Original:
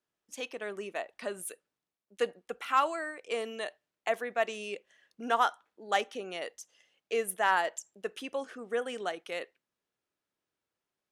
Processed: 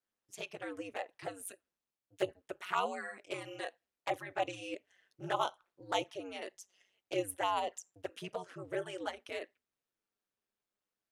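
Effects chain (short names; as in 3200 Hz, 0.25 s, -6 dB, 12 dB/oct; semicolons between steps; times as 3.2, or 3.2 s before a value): envelope flanger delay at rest 9.6 ms, full sweep at -25.5 dBFS; ring modulator 95 Hz; gain +1 dB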